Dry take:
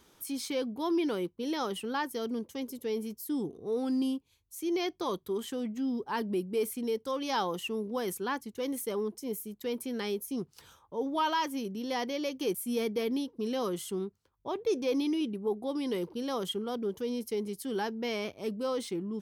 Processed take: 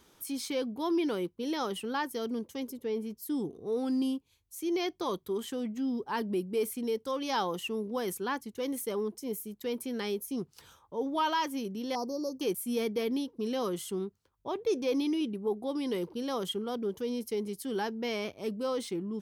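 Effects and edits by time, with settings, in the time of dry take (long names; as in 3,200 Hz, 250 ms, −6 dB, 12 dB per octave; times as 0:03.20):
0:02.71–0:03.21: high-shelf EQ 3,200 Hz → 6,200 Hz −11.5 dB
0:11.95–0:12.41: elliptic band-stop filter 1,200–4,700 Hz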